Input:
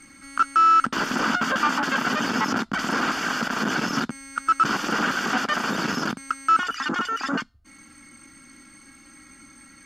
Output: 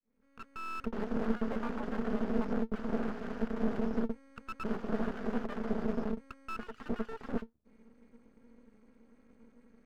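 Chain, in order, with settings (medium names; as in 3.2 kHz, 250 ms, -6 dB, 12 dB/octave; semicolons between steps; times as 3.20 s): fade-in on the opening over 0.84 s; two resonant band-passes 310 Hz, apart 0.92 oct; half-wave rectifier; trim +5 dB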